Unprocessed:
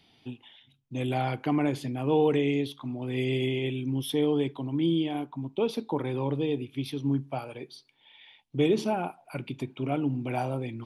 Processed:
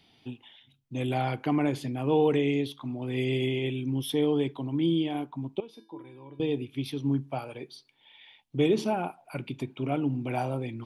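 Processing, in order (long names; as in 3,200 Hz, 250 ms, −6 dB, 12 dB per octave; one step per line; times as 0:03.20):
0:05.60–0:06.40: tuned comb filter 330 Hz, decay 0.38 s, harmonics odd, mix 90%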